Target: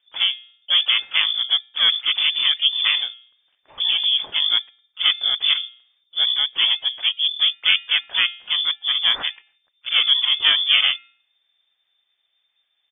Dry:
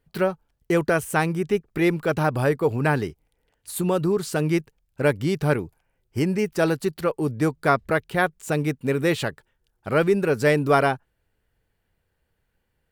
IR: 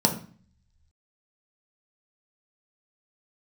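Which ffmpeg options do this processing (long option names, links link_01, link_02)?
-filter_complex "[0:a]bandreject=frequency=371.4:width_type=h:width=4,bandreject=frequency=742.8:width_type=h:width=4,bandreject=frequency=1114.2:width_type=h:width=4,bandreject=frequency=1485.6:width_type=h:width=4,bandreject=frequency=1857:width_type=h:width=4,bandreject=frequency=2228.4:width_type=h:width=4,asplit=3[link_01][link_02][link_03];[link_02]asetrate=29433,aresample=44100,atempo=1.49831,volume=0dB[link_04];[link_03]asetrate=66075,aresample=44100,atempo=0.66742,volume=-12dB[link_05];[link_01][link_04][link_05]amix=inputs=3:normalize=0,lowpass=frequency=3100:width_type=q:width=0.5098,lowpass=frequency=3100:width_type=q:width=0.6013,lowpass=frequency=3100:width_type=q:width=0.9,lowpass=frequency=3100:width_type=q:width=2.563,afreqshift=-3600,volume=-1dB"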